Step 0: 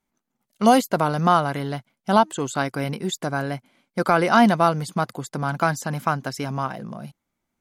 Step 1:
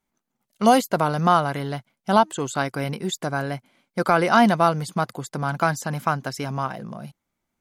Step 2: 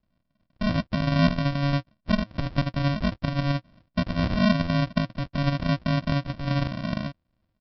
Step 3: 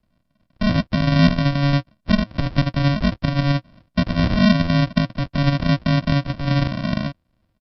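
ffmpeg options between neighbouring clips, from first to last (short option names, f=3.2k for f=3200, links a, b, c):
-af "equalizer=f=260:t=o:w=0.66:g=-2"
-filter_complex "[0:a]alimiter=limit=-10.5dB:level=0:latency=1:release=17,acrossover=split=200[a][b];[b]acompressor=threshold=-36dB:ratio=5[c];[a][c]amix=inputs=2:normalize=0,aresample=11025,acrusher=samples=26:mix=1:aa=0.000001,aresample=44100,volume=7dB"
-filter_complex "[0:a]acrossover=split=430|1300[a][b][c];[b]asoftclip=type=tanh:threshold=-31dB[d];[a][d][c]amix=inputs=3:normalize=0,aresample=32000,aresample=44100,volume=6.5dB"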